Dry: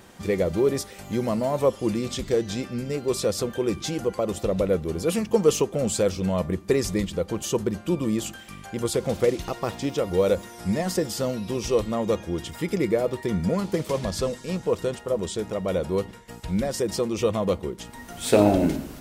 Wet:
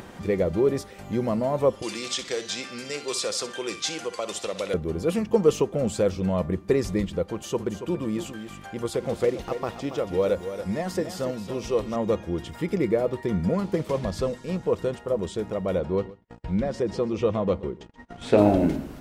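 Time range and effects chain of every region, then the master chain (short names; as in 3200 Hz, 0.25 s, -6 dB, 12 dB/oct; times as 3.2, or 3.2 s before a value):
1.82–4.74 weighting filter ITU-R 468 + flutter echo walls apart 10.6 m, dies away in 0.28 s + three-band squash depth 40%
7.23–11.96 low shelf 380 Hz -5 dB + echo 0.28 s -10 dB
15.8–18.38 air absorption 81 m + gate -40 dBFS, range -33 dB + echo 0.13 s -19.5 dB
whole clip: high shelf 3600 Hz -10.5 dB; upward compressor, threshold -35 dBFS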